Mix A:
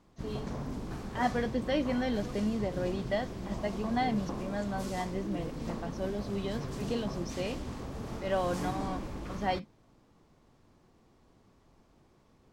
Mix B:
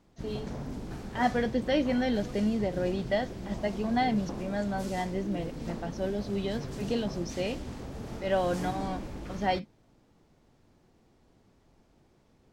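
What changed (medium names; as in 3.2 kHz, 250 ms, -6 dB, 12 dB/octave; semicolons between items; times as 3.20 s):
speech +3.5 dB; master: add peaking EQ 1.1 kHz -6.5 dB 0.29 oct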